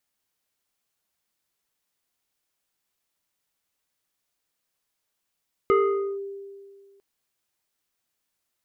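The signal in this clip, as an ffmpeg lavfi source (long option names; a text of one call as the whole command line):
ffmpeg -f lavfi -i "aevalsrc='0.188*pow(10,-3*t/1.93)*sin(2*PI*396*t+1.1*clip(1-t/0.49,0,1)*sin(2*PI*2.13*396*t))':duration=1.3:sample_rate=44100" out.wav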